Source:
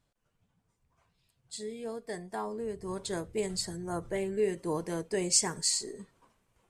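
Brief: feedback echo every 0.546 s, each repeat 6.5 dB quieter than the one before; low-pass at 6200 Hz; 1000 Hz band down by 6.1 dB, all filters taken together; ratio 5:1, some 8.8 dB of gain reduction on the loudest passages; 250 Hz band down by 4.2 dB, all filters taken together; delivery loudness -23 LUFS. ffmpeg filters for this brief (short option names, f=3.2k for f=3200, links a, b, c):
-af "lowpass=6.2k,equalizer=f=250:t=o:g=-6.5,equalizer=f=1k:t=o:g=-7.5,acompressor=threshold=-36dB:ratio=5,aecho=1:1:546|1092|1638|2184|2730|3276:0.473|0.222|0.105|0.0491|0.0231|0.0109,volume=17.5dB"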